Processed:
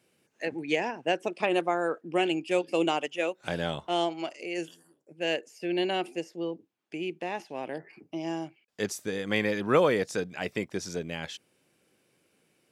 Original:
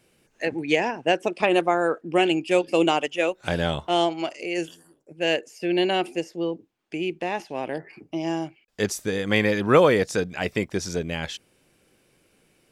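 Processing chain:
high-pass filter 120 Hz
level −6 dB

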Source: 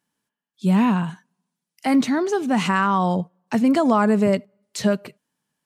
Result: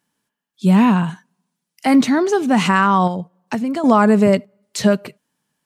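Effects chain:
0:03.07–0:03.84: downward compressor 5 to 1, threshold −25 dBFS, peak gain reduction 10 dB
level +5 dB

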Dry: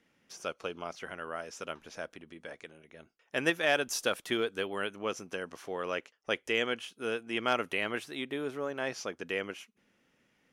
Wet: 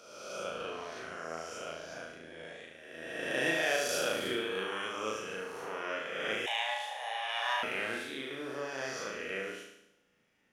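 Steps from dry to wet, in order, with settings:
peak hold with a rise ahead of every peak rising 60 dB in 1.55 s
flutter between parallel walls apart 6.3 metres, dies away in 0.8 s
0:06.46–0:07.63: frequency shifter +350 Hz
level −8.5 dB

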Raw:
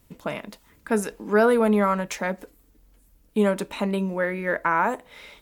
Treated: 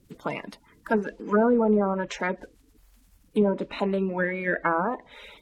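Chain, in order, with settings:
spectral magnitudes quantised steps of 30 dB
treble cut that deepens with the level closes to 750 Hz, closed at −17 dBFS

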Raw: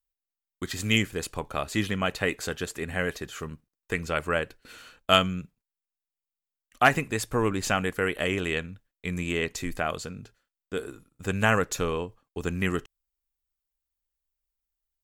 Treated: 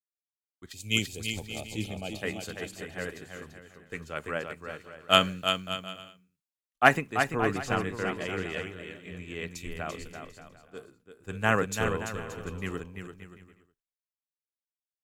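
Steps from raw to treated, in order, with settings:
0:00.72–0:02.22: gain on a spectral selection 900–2,100 Hz −16 dB
0:06.97–0:09.55: high-shelf EQ 8,100 Hz −10.5 dB
bit-depth reduction 12 bits, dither triangular
bouncing-ball delay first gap 340 ms, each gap 0.7×, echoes 5
multiband upward and downward expander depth 100%
level −7.5 dB

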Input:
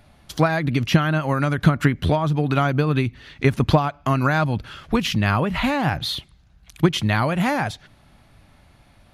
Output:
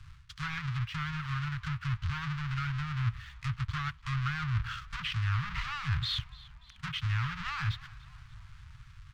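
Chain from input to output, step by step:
each half-wave held at its own peak
reversed playback
downward compressor 16 to 1, threshold −24 dBFS, peak gain reduction 19 dB
reversed playback
high-frequency loss of the air 93 metres
treble cut that deepens with the level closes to 2,600 Hz, closed at −23 dBFS
leveller curve on the samples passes 1
elliptic band-stop filter 130–1,200 Hz, stop band 40 dB
on a send: echo with shifted repeats 292 ms, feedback 54%, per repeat −62 Hz, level −21 dB
on the sum: level −4 dB

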